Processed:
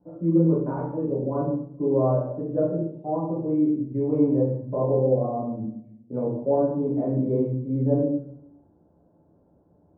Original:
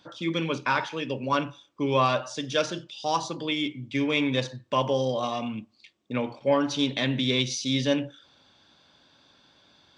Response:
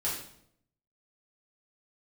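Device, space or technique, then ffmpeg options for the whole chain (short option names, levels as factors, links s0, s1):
next room: -filter_complex "[0:a]lowpass=f=650:w=0.5412,lowpass=f=650:w=1.3066[s0];[1:a]atrim=start_sample=2205[s1];[s0][s1]afir=irnorm=-1:irlink=0"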